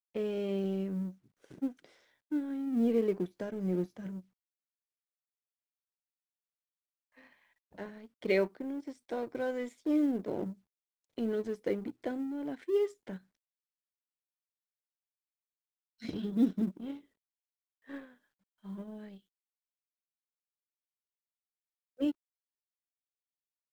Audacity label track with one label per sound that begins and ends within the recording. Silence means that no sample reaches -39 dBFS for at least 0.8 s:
7.780000	13.160000	sound
16.020000	16.960000	sound
17.900000	19.040000	sound
22.000000	22.110000	sound